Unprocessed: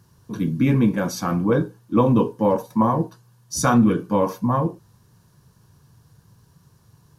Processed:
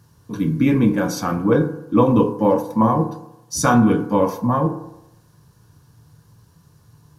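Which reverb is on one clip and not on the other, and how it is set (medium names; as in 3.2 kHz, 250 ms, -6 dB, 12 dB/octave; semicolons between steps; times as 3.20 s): FDN reverb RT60 0.88 s, low-frequency decay 0.85×, high-frequency decay 0.35×, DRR 7 dB; trim +1.5 dB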